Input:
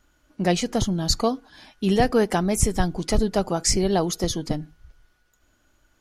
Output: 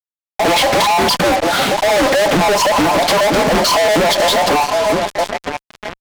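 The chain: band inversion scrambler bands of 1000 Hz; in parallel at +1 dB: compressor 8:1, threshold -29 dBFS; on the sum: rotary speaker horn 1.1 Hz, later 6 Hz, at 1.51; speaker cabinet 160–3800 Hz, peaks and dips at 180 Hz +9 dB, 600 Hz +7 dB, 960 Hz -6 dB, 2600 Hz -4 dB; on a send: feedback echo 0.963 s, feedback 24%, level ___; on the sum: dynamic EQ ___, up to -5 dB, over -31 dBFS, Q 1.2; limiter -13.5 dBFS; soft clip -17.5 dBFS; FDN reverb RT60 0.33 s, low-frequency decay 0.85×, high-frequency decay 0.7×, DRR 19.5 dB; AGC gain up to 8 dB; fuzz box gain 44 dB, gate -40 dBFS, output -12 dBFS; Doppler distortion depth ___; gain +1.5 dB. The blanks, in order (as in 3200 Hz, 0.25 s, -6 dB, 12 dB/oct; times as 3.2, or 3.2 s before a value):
-23 dB, 810 Hz, 0.48 ms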